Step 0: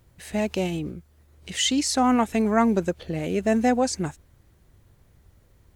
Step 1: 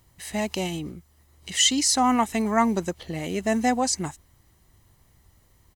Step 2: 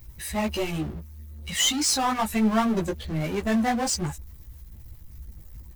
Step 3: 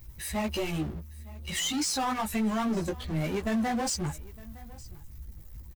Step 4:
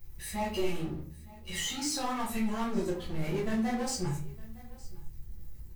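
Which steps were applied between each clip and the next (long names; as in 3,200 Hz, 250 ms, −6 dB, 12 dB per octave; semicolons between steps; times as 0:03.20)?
bass and treble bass −6 dB, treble +5 dB; comb filter 1 ms, depth 43%
spectral dynamics exaggerated over time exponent 1.5; power curve on the samples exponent 0.5; multi-voice chorus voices 6, 1.5 Hz, delay 16 ms, depth 3 ms; level −3.5 dB
brickwall limiter −20 dBFS, peak gain reduction 9 dB; single-tap delay 911 ms −21.5 dB; level −2 dB
rectangular room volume 36 cubic metres, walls mixed, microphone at 0.91 metres; level −8.5 dB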